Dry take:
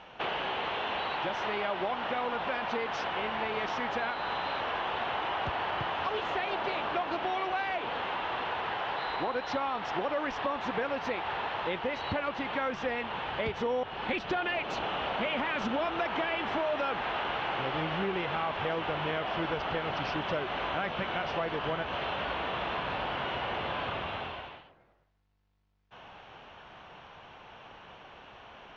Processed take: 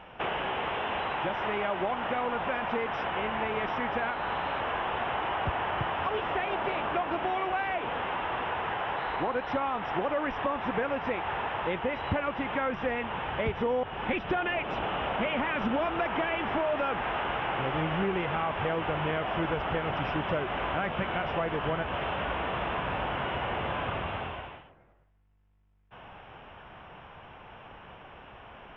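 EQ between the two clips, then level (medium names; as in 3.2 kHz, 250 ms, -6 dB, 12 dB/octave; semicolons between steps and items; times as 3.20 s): Savitzky-Golay filter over 25 samples; bass shelf 160 Hz +7 dB; +1.5 dB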